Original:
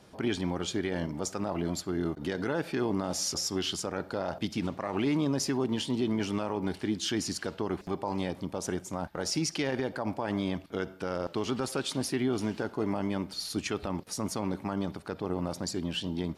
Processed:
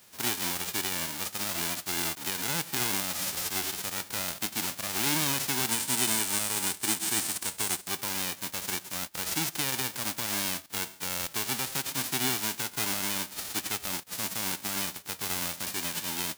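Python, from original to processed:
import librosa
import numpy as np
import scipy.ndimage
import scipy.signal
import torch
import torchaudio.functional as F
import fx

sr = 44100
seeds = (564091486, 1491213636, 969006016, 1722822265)

y = fx.envelope_flatten(x, sr, power=0.1)
y = fx.peak_eq(y, sr, hz=8600.0, db=8.0, octaves=0.47, at=(5.71, 7.88))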